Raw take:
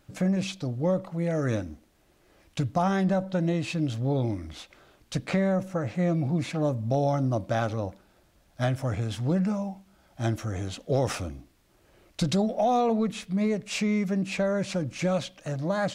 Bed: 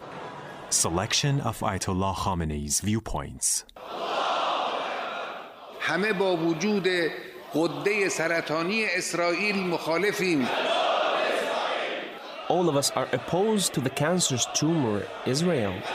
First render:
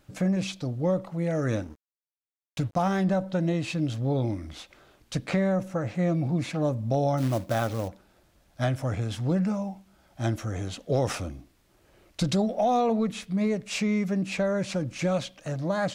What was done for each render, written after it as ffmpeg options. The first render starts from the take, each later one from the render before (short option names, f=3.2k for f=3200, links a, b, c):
-filter_complex "[0:a]asettb=1/sr,asplit=3[a][b][c];[a]atrim=end=1.634[d];[b]atrim=start=1.63:end=3,asetpts=PTS-STARTPTS,afade=t=in:d=0.004:c=qsin,afade=t=out:st=1.366:d=0.004:c=qsin,aeval=exprs='sgn(val(0))*max(abs(val(0))-0.00501,0)':c=same[e];[c]atrim=start=2.996[f];[d][e]acrossfade=d=0.004:c1=hsin:c2=qsin[g];[g][f]acrossfade=d=0.004:c1=qsin:c2=hsin,asplit=3[h][i][j];[h]afade=t=out:st=7.17:d=0.02[k];[i]acrusher=bits=4:mode=log:mix=0:aa=0.000001,afade=t=in:st=7.17:d=0.02,afade=t=out:st=7.87:d=0.02[l];[j]afade=t=in:st=7.87:d=0.02[m];[k][l][m]amix=inputs=3:normalize=0"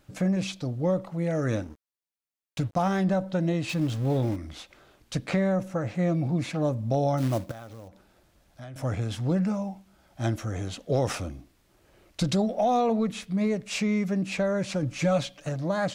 -filter_complex "[0:a]asettb=1/sr,asplit=3[a][b][c];[a]atrim=end=3.694[d];[b]atrim=start=3.69:end=4.36,asetpts=PTS-STARTPTS,afade=t=in:d=0.004:c=qsin,afade=t=out:st=0.666:d=0.004:c=qsin,aeval=exprs='val(0)+0.5*0.0133*sgn(val(0))':c=same[e];[c]atrim=start=4.356[f];[d][e]acrossfade=d=0.004:c1=hsin:c2=qsin[g];[g][f]acrossfade=d=0.004:c1=qsin:c2=hsin,asettb=1/sr,asplit=3[h][i][j];[h]atrim=end=7.514[k];[i]atrim=start=7.51:end=8.76,asetpts=PTS-STARTPTS,afade=t=in:d=0.004:c=qsin,afade=t=out:st=1.246:d=0.004:c=qsin,acompressor=threshold=-44dB:ratio=3:attack=3.2:release=140:knee=1:detection=peak[l];[j]atrim=start=8.756[m];[k][l]acrossfade=d=0.004:c1=hsin:c2=qsin[n];[n][m]acrossfade=d=0.004:c1=qsin:c2=hsin,asettb=1/sr,asplit=3[o][p][q];[o]atrim=end=14.824[r];[p]atrim=start=14.82:end=15.49,asetpts=PTS-STARTPTS,afade=t=in:d=0.004:c=qsin,afade=t=out:st=0.666:d=0.004:c=qsin,aecho=1:1:6.9:0.66,atrim=end_sample=29547[s];[q]atrim=start=15.486[t];[r][s]acrossfade=d=0.004:c1=hsin:c2=qsin[u];[u][t]acrossfade=d=0.004:c1=qsin:c2=hsin"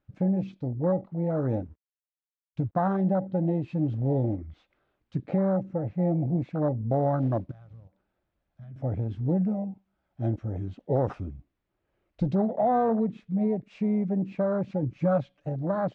-af "lowpass=2.7k,afwtdn=0.0355"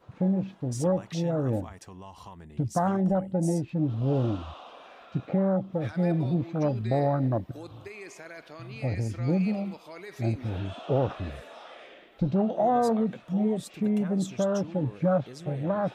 -filter_complex "[1:a]volume=-18.5dB[a];[0:a][a]amix=inputs=2:normalize=0"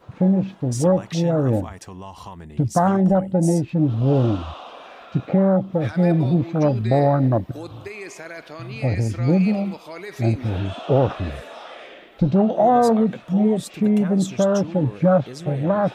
-af "volume=8dB"